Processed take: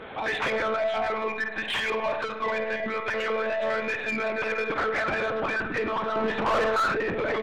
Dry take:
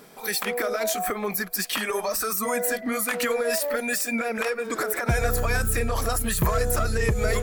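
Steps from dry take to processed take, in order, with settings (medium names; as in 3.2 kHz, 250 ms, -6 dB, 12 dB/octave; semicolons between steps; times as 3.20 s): peak limiter -20 dBFS, peak gain reduction 8.5 dB; monotone LPC vocoder at 8 kHz 220 Hz; multi-tap echo 52/103 ms -15/-18.5 dB; Schroeder reverb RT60 0.92 s, combs from 29 ms, DRR 12 dB; compression 12:1, threshold -28 dBFS, peak gain reduction 8.5 dB; 6.15–6.93 s: peaking EQ 330 Hz -> 1.9 kHz +14.5 dB 2.9 oct; overdrive pedal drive 29 dB, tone 2.2 kHz, clips at -10 dBFS; 1.61–2.87 s: band-stop 1.3 kHz, Q 8.5; trim -6 dB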